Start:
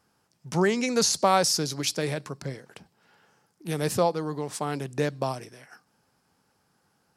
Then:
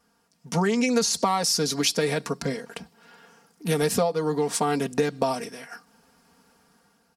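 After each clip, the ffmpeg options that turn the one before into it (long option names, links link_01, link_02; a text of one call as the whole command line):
ffmpeg -i in.wav -af "dynaudnorm=framelen=250:gausssize=5:maxgain=7dB,aecho=1:1:4.3:0.84,acompressor=threshold=-19dB:ratio=10" out.wav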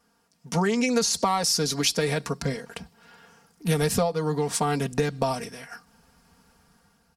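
ffmpeg -i in.wav -af "asubboost=boost=4.5:cutoff=130" out.wav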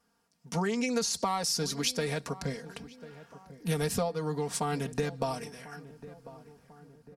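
ffmpeg -i in.wav -filter_complex "[0:a]asplit=2[link_01][link_02];[link_02]adelay=1045,lowpass=frequency=1300:poles=1,volume=-16dB,asplit=2[link_03][link_04];[link_04]adelay=1045,lowpass=frequency=1300:poles=1,volume=0.5,asplit=2[link_05][link_06];[link_06]adelay=1045,lowpass=frequency=1300:poles=1,volume=0.5,asplit=2[link_07][link_08];[link_08]adelay=1045,lowpass=frequency=1300:poles=1,volume=0.5[link_09];[link_01][link_03][link_05][link_07][link_09]amix=inputs=5:normalize=0,volume=-6.5dB" out.wav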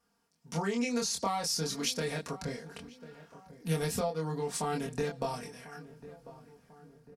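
ffmpeg -i in.wav -filter_complex "[0:a]asplit=2[link_01][link_02];[link_02]adelay=25,volume=-2.5dB[link_03];[link_01][link_03]amix=inputs=2:normalize=0,volume=-4dB" out.wav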